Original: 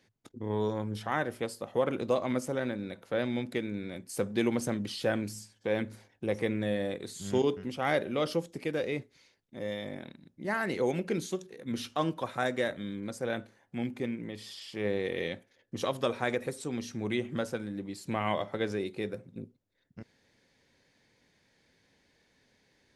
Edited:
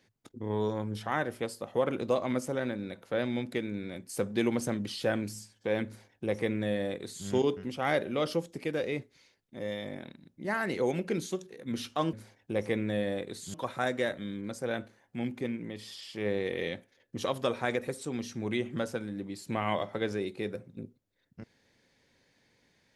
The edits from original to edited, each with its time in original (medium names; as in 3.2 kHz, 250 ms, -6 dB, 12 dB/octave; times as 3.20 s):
5.86–7.27 s: copy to 12.13 s